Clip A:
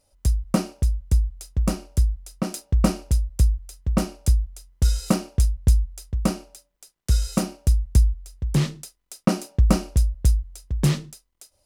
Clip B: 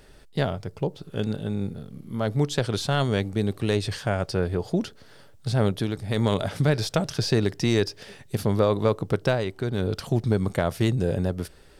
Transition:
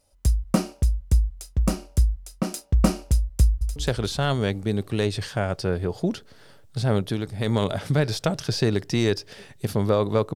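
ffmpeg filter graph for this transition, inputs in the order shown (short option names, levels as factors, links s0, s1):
-filter_complex "[0:a]apad=whole_dur=10.35,atrim=end=10.35,atrim=end=3.762[s0];[1:a]atrim=start=2.458:end=9.05[s1];[s0][s1]acrossfade=d=0.004:c1=hsin:c2=hsin,asplit=2[s2][s3];[s3]afade=t=in:st=3.43:d=0.01,afade=t=out:st=3.76:d=0.01,aecho=0:1:180|360|540|720|900|1080:0.501187|0.250594|0.125297|0.0626484|0.0313242|0.0156621[s4];[s2][s4]amix=inputs=2:normalize=0"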